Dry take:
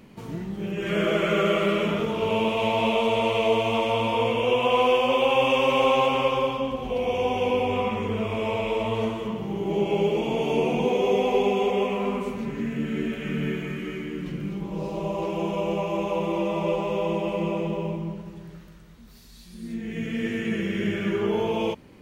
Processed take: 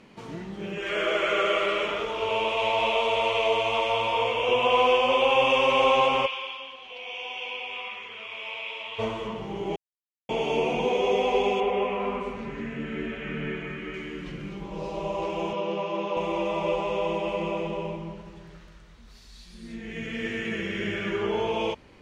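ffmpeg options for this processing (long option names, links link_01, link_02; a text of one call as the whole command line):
ffmpeg -i in.wav -filter_complex "[0:a]asettb=1/sr,asplit=3[link_01][link_02][link_03];[link_01]atrim=end=0.784[link_04];[link_02]atrim=start=0.78:end=4.49,asetpts=PTS-STARTPTS,afade=type=in:duration=0.004:curve=qsin,afade=type=out:start_time=3.706:duration=0.004:curve=qsin,equalizer=frequency=180:width_type=o:width=1.1:gain=-14[link_05];[link_03]atrim=start=4.486[link_06];[link_04][link_05]acrossfade=duration=0.004:curve1=hsin:curve2=qsin[link_07];[link_07][link_06]acrossfade=duration=0.004:curve1=qsin:curve2=hsin,asplit=3[link_08][link_09][link_10];[link_08]afade=type=out:start_time=6.25:duration=0.02[link_11];[link_09]bandpass=frequency=2900:width_type=q:width=1.4,afade=type=in:start_time=6.25:duration=0.02,afade=type=out:start_time=8.98:duration=0.02[link_12];[link_10]afade=type=in:start_time=8.98:duration=0.02[link_13];[link_11][link_12][link_13]amix=inputs=3:normalize=0,asettb=1/sr,asplit=3[link_14][link_15][link_16];[link_14]atrim=end=11.604[link_17];[link_15]atrim=start=11.6:end=13.94,asetpts=PTS-STARTPTS,afade=type=in:duration=0.004:curve=qsin,afade=type=out:start_time=2.336:duration=0.004:curve=qsin,acrossover=split=3000[link_18][link_19];[link_19]acompressor=threshold=-59dB:ratio=4:attack=1:release=60[link_20];[link_18][link_20]amix=inputs=2:normalize=0[link_21];[link_16]atrim=start=13.936[link_22];[link_17][link_21]acrossfade=duration=0.004:curve1=hsin:curve2=qsin[link_23];[link_23][link_22]acrossfade=duration=0.004:curve1=qsin:curve2=hsin,asettb=1/sr,asplit=3[link_24][link_25][link_26];[link_24]atrim=end=15.534[link_27];[link_25]atrim=start=15.53:end=16.17,asetpts=PTS-STARTPTS,afade=type=in:duration=0.004:curve=qsin,afade=type=out:start_time=0.636:duration=0.004:curve=qsin,highpass=frequency=170:width=0.5412,highpass=frequency=170:width=1.3066,equalizer=frequency=220:width_type=q:width=4:gain=4,equalizer=frequency=720:width_type=q:width=4:gain=-7,equalizer=frequency=2300:width_type=q:width=4:gain=-5,lowpass=frequency=5500:width=0.5412,lowpass=frequency=5500:width=1.3066[link_28];[link_26]atrim=start=16.166[link_29];[link_27][link_28]acrossfade=duration=0.004:curve1=hsin:curve2=qsin[link_30];[link_30][link_29]acrossfade=duration=0.004:curve1=qsin:curve2=hsin,asplit=3[link_31][link_32][link_33];[link_31]atrim=end=9.76,asetpts=PTS-STARTPTS,afade=type=out:start_time=9.756:duration=0.004:curve=hsin[link_34];[link_32]atrim=start=9.76:end=10.29,asetpts=PTS-STARTPTS,volume=0[link_35];[link_33]atrim=start=10.29,asetpts=PTS-STARTPTS,afade=type=in:duration=0.004:curve=hsin[link_36];[link_34][link_35][link_36]concat=n=3:v=0:a=1,asubboost=boost=3.5:cutoff=94,lowpass=6700,lowshelf=frequency=260:gain=-11,volume=2dB" out.wav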